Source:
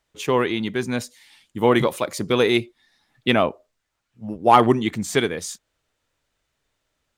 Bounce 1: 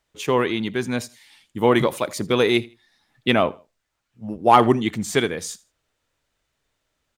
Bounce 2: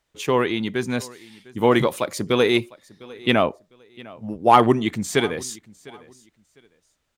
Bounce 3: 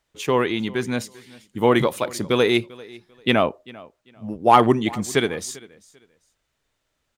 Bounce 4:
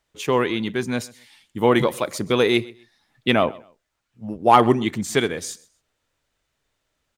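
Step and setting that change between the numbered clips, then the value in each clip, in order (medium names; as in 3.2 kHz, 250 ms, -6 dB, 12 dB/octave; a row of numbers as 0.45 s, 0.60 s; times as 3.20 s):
feedback delay, time: 80 ms, 703 ms, 394 ms, 128 ms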